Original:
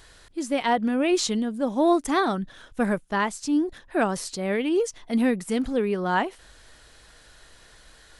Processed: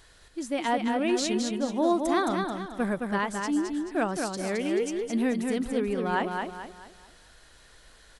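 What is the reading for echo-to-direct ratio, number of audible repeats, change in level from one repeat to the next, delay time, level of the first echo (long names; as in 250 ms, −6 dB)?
−4.0 dB, 4, −8.5 dB, 217 ms, −4.5 dB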